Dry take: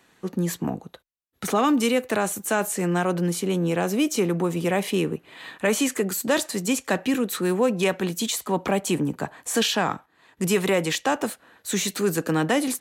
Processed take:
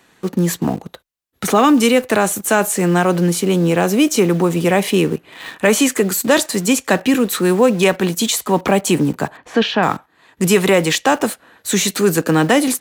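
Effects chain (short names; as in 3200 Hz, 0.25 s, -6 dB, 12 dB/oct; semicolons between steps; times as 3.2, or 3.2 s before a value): in parallel at -9.5 dB: requantised 6-bit, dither none; 9.37–9.83 on the sum: air absorption 280 m; gain +6 dB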